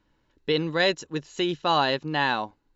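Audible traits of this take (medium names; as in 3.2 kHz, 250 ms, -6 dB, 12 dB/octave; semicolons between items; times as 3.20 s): noise floor -70 dBFS; spectral tilt -2.5 dB/octave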